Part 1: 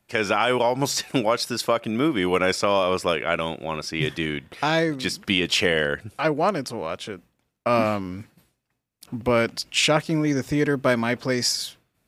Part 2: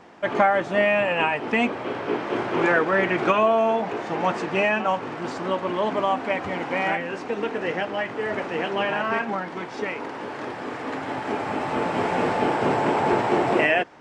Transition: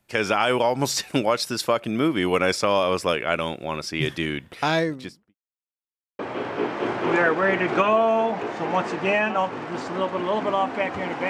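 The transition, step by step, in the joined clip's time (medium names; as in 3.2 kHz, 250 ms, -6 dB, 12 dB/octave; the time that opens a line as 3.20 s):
part 1
4.68–5.35 s: studio fade out
5.35–6.19 s: mute
6.19 s: go over to part 2 from 1.69 s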